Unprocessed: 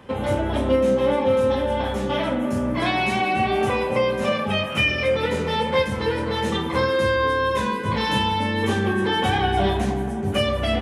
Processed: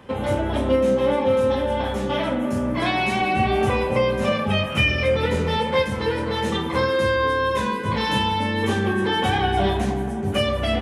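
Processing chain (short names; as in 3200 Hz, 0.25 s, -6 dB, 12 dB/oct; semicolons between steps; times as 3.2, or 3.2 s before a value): 3.21–5.58 low shelf 100 Hz +11.5 dB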